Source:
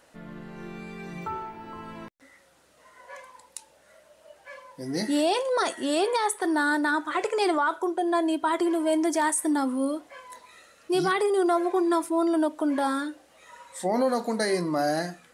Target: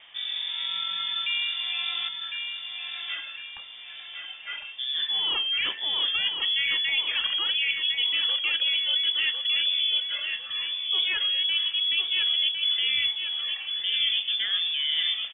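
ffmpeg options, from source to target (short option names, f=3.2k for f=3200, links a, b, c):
-af "equalizer=f=190:t=o:w=0.77:g=3.5,areverse,acompressor=threshold=-33dB:ratio=6,areverse,aecho=1:1:1055|2110|3165|4220|5275:0.531|0.212|0.0849|0.034|0.0136,lowpass=f=3.1k:t=q:w=0.5098,lowpass=f=3.1k:t=q:w=0.6013,lowpass=f=3.1k:t=q:w=0.9,lowpass=f=3.1k:t=q:w=2.563,afreqshift=-3700,volume=8dB"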